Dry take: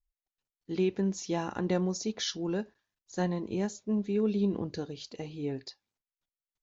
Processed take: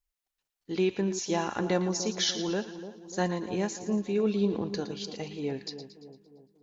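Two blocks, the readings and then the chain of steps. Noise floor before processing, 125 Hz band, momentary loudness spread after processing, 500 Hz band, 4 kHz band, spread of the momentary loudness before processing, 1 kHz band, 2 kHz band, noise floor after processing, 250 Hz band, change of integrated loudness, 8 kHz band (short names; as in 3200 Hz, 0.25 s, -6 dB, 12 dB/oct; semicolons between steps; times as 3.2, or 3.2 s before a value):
under -85 dBFS, 0.0 dB, 10 LU, +3.0 dB, +6.0 dB, 12 LU, +4.5 dB, +5.5 dB, under -85 dBFS, +0.5 dB, +2.0 dB, n/a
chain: low shelf 340 Hz -8 dB; split-band echo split 1000 Hz, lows 0.294 s, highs 0.114 s, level -11.5 dB; gain +5.5 dB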